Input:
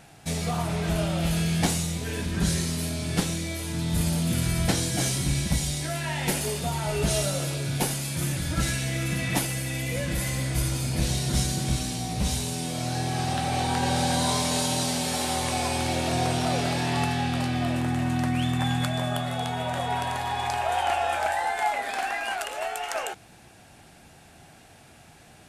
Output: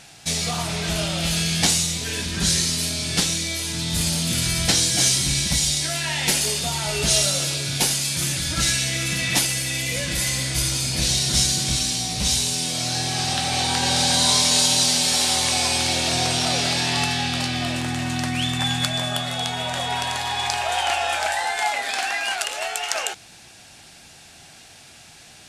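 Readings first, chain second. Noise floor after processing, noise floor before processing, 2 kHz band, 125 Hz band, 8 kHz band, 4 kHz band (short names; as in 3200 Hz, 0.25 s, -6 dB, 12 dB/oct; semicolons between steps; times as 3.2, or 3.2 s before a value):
-47 dBFS, -52 dBFS, +6.0 dB, -1.0 dB, +10.5 dB, +11.5 dB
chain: bell 5100 Hz +14 dB 2.6 oct; gain -1 dB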